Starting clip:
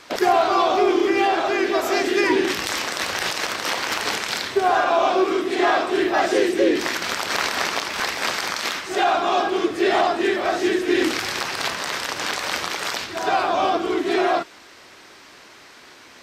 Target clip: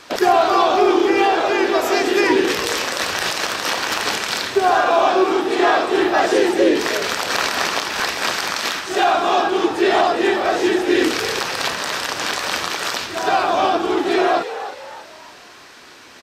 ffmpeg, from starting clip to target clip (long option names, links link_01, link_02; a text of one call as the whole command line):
ffmpeg -i in.wav -filter_complex "[0:a]bandreject=frequency=2100:width=16,asplit=5[link_01][link_02][link_03][link_04][link_05];[link_02]adelay=313,afreqshift=85,volume=-12dB[link_06];[link_03]adelay=626,afreqshift=170,volume=-19.7dB[link_07];[link_04]adelay=939,afreqshift=255,volume=-27.5dB[link_08];[link_05]adelay=1252,afreqshift=340,volume=-35.2dB[link_09];[link_01][link_06][link_07][link_08][link_09]amix=inputs=5:normalize=0,volume=3dB" out.wav